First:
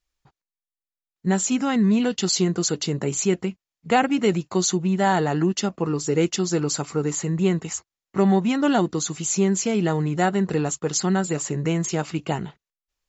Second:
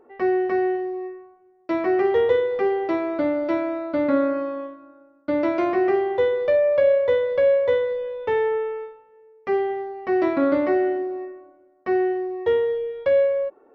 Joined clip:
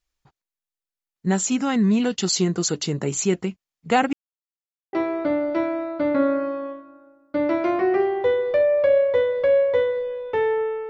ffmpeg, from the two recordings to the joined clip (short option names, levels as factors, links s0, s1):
-filter_complex "[0:a]apad=whole_dur=10.89,atrim=end=10.89,asplit=2[s0][s1];[s0]atrim=end=4.13,asetpts=PTS-STARTPTS,afade=t=out:st=4.126:d=0.004:c=hsin[s2];[s1]atrim=start=4.13:end=4.93,asetpts=PTS-STARTPTS,volume=0[s3];[1:a]atrim=start=2.87:end=8.83,asetpts=PTS-STARTPTS,afade=t=in:d=0.004:c=hsin[s4];[s2][s3][s4]concat=n=3:v=0:a=1"